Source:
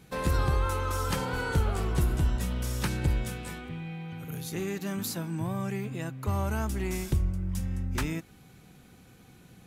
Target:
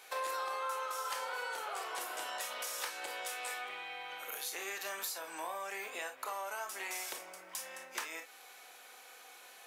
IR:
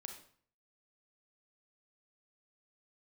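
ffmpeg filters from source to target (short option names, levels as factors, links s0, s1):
-filter_complex "[0:a]highpass=f=600:w=0.5412,highpass=f=600:w=1.3066,acompressor=threshold=0.00631:ratio=6[s0];[1:a]atrim=start_sample=2205,atrim=end_sample=3528,asetrate=57330,aresample=44100[s1];[s0][s1]afir=irnorm=-1:irlink=0,volume=5.01"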